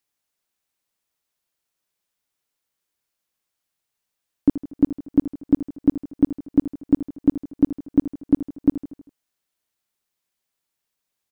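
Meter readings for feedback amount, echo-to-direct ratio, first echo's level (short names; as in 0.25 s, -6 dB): 54%, -12.5 dB, -14.0 dB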